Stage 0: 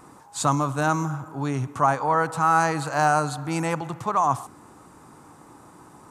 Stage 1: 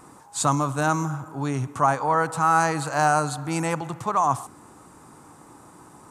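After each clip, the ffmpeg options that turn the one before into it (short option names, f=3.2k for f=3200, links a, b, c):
-af "equalizer=f=8.7k:t=o:w=0.88:g=4"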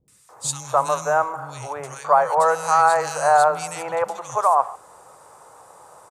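-filter_complex "[0:a]lowshelf=f=390:t=q:w=3:g=-10.5,acrossover=split=250|2300[a][b][c];[c]adelay=80[d];[b]adelay=290[e];[a][e][d]amix=inputs=3:normalize=0,volume=2dB"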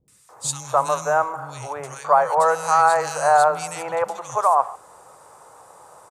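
-af anull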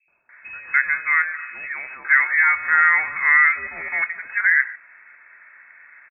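-filter_complex "[0:a]asplit=2[a][b];[b]adelay=23,volume=-13dB[c];[a][c]amix=inputs=2:normalize=0,lowpass=f=2.3k:t=q:w=0.5098,lowpass=f=2.3k:t=q:w=0.6013,lowpass=f=2.3k:t=q:w=0.9,lowpass=f=2.3k:t=q:w=2.563,afreqshift=-2700"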